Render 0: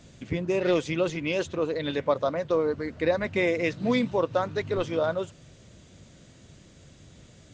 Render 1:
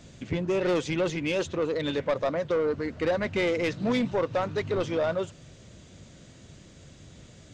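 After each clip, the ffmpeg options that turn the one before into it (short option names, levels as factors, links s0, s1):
-af "asoftclip=type=tanh:threshold=0.0794,volume=1.26"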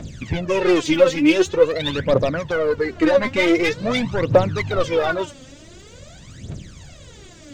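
-af "aphaser=in_gain=1:out_gain=1:delay=3.9:decay=0.77:speed=0.46:type=triangular,volume=2"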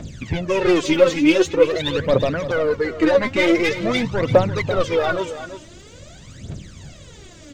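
-af "aecho=1:1:338:0.251"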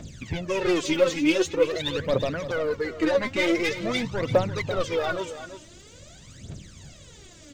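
-af "highshelf=f=3700:g=6,volume=0.447"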